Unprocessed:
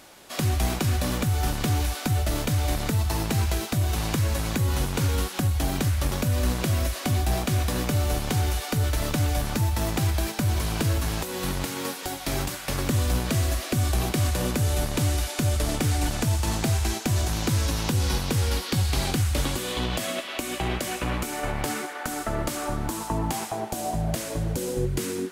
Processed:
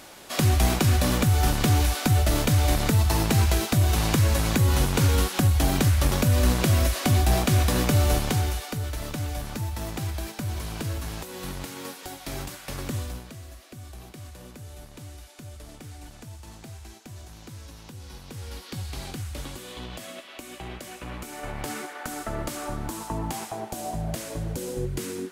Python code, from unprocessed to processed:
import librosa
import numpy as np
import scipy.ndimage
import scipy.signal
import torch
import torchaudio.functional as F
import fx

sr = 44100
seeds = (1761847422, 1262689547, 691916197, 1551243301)

y = fx.gain(x, sr, db=fx.line((8.14, 3.5), (8.82, -6.5), (12.96, -6.5), (13.36, -18.5), (18.07, -18.5), (18.71, -10.5), (20.97, -10.5), (21.81, -3.5)))